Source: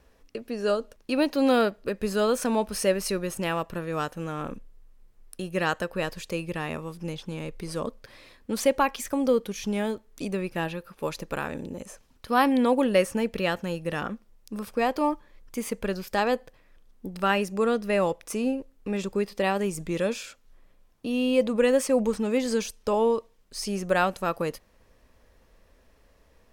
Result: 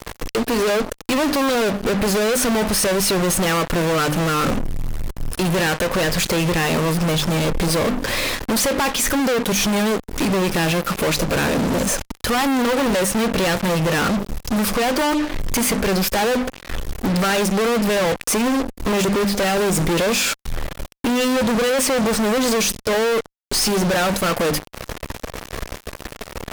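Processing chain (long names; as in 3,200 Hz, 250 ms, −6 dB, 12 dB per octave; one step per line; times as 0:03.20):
mains-hum notches 50/100/150/200/250/300 Hz
downward compressor 2 to 1, threshold −41 dBFS, peak gain reduction 13.5 dB
fuzz pedal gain 59 dB, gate −55 dBFS
level −4 dB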